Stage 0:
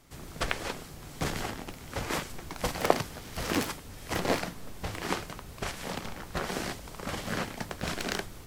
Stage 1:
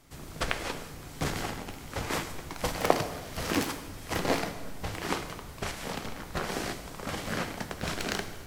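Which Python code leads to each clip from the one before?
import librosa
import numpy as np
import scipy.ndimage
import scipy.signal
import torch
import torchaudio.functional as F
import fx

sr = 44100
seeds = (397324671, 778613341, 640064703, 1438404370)

y = fx.rev_plate(x, sr, seeds[0], rt60_s=1.4, hf_ratio=0.8, predelay_ms=0, drr_db=8.5)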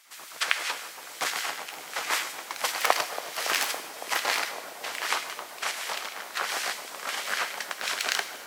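y = fx.filter_lfo_highpass(x, sr, shape='sine', hz=7.9, low_hz=830.0, high_hz=2000.0, q=0.89)
y = fx.echo_wet_lowpass(y, sr, ms=280, feedback_pct=82, hz=580.0, wet_db=-7.0)
y = y * 10.0 ** (7.0 / 20.0)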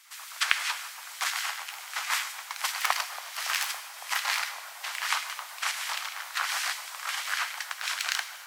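y = scipy.signal.sosfilt(scipy.signal.butter(4, 870.0, 'highpass', fs=sr, output='sos'), x)
y = fx.rider(y, sr, range_db=4, speed_s=2.0)
y = y * 10.0 ** (-1.0 / 20.0)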